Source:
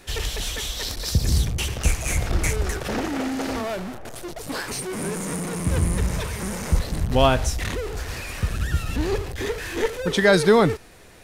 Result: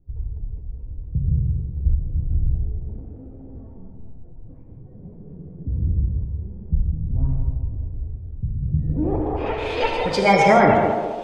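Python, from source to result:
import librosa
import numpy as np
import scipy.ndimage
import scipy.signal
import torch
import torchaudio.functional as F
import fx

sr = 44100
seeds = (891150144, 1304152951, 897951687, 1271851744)

y = fx.spec_gate(x, sr, threshold_db=-30, keep='strong')
y = fx.notch(y, sr, hz=3900.0, q=12.0)
y = fx.formant_shift(y, sr, semitones=6)
y = fx.echo_banded(y, sr, ms=205, feedback_pct=51, hz=500.0, wet_db=-3.5)
y = fx.filter_sweep_lowpass(y, sr, from_hz=110.0, to_hz=5000.0, start_s=8.6, end_s=9.82, q=0.86)
y = fx.rev_gated(y, sr, seeds[0], gate_ms=190, shape='flat', drr_db=1.5)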